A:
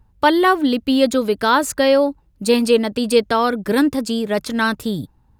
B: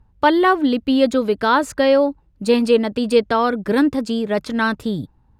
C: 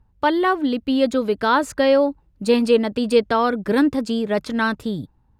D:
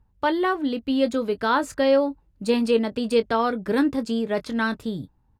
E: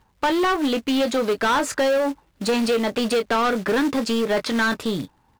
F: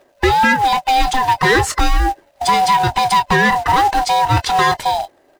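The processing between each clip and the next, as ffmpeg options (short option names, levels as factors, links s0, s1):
-af "aemphasis=mode=reproduction:type=50kf"
-af "dynaudnorm=f=240:g=9:m=3.76,volume=0.631"
-filter_complex "[0:a]asplit=2[s0][s1];[s1]adelay=22,volume=0.237[s2];[s0][s2]amix=inputs=2:normalize=0,volume=0.631"
-filter_complex "[0:a]acompressor=threshold=0.1:ratio=16,acrusher=bits=6:mode=log:mix=0:aa=0.000001,asplit=2[s0][s1];[s1]highpass=f=720:p=1,volume=12.6,asoftclip=type=tanh:threshold=0.224[s2];[s0][s2]amix=inputs=2:normalize=0,lowpass=f=5100:p=1,volume=0.501"
-af "afftfilt=real='real(if(lt(b,1008),b+24*(1-2*mod(floor(b/24),2)),b),0)':imag='imag(if(lt(b,1008),b+24*(1-2*mod(floor(b/24),2)),b),0)':win_size=2048:overlap=0.75,volume=2.24"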